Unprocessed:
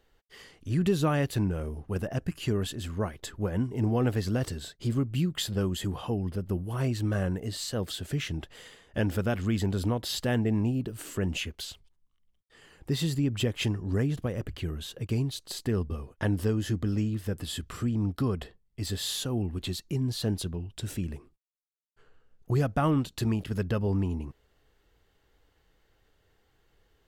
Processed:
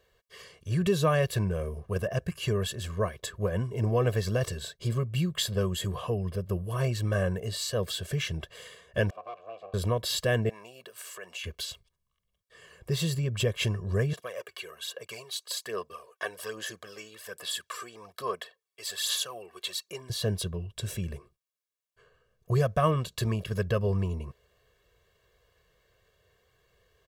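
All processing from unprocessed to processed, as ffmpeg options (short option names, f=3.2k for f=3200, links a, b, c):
-filter_complex "[0:a]asettb=1/sr,asplit=3[a][b][c];[a]atrim=end=9.104[d];[b]atrim=start=9.1:end=9.74,asetpts=PTS-STARTPTS,afade=t=in:d=0.004:c=qsin,afade=t=out:st=0.636:d=0.004:c=qsin,highshelf=f=3.4k:g=-9.5,aeval=exprs='abs(val(0))':c=same,asplit=3[e][f][g];[e]bandpass=f=730:t=q:w=8,volume=0dB[h];[f]bandpass=f=1.09k:t=q:w=8,volume=-6dB[i];[g]bandpass=f=2.44k:t=q:w=8,volume=-9dB[j];[h][i][j]amix=inputs=3:normalize=0[k];[c]atrim=start=9.736[l];[d][k]acrossfade=d=0.004:c1=hsin:c2=qsin[m];[m][l]acrossfade=d=0.004:c1=qsin:c2=hsin,asettb=1/sr,asplit=3[n][o][p];[n]atrim=end=10.494[q];[o]atrim=start=10.49:end=11.44,asetpts=PTS-STARTPTS,afade=t=in:d=0.004:c=qsin,afade=t=out:st=0.946:d=0.004:c=qsin,highpass=780,acompressor=threshold=-44dB:ratio=2:attack=3.2:release=140:knee=1:detection=peak[r];[p]atrim=start=11.436[s];[q][r]acrossfade=d=0.004:c1=hsin:c2=qsin[t];[t][s]acrossfade=d=0.004:c1=qsin:c2=hsin,asettb=1/sr,asplit=3[u][v][w];[u]atrim=end=14.134[x];[v]atrim=start=14.13:end=20.1,asetpts=PTS-STARTPTS,afade=t=in:d=0.004:c=qsin,afade=t=out:st=5.966:d=0.004:c=qsin,highpass=690,aphaser=in_gain=1:out_gain=1:delay=2.7:decay=0.51:speed=1.2:type=sinusoidal[y];[w]atrim=start=20.096[z];[x][y]acrossfade=d=0.004:c1=hsin:c2=qsin[aa];[aa][z]acrossfade=d=0.004:c1=qsin:c2=hsin,highpass=f=110:p=1,aecho=1:1:1.8:0.91"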